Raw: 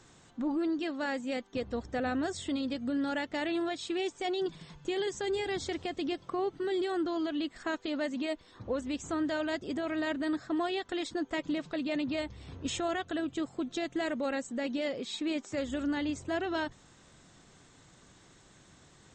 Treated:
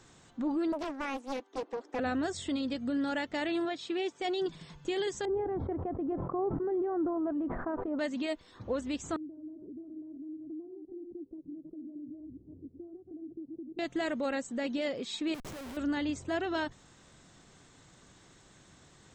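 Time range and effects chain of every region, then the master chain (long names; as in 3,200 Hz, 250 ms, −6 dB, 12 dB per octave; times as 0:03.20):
0:00.72–0:01.99: Butterworth high-pass 270 Hz 72 dB per octave + high-shelf EQ 2,100 Hz −8.5 dB + highs frequency-modulated by the lows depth 0.91 ms
0:03.65–0:04.22: high-pass filter 140 Hz + high-frequency loss of the air 88 metres
0:05.25–0:07.99: low-pass filter 1,100 Hz 24 dB per octave + level that may fall only so fast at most 34 dB per second
0:09.16–0:13.79: delay that plays each chunk backwards 169 ms, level −8.5 dB + downward compressor 12 to 1, threshold −37 dBFS + transistor ladder low-pass 380 Hz, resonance 60%
0:15.34–0:15.77: downward compressor 16 to 1, threshold −37 dBFS + comparator with hysteresis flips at −45 dBFS
whole clip: no processing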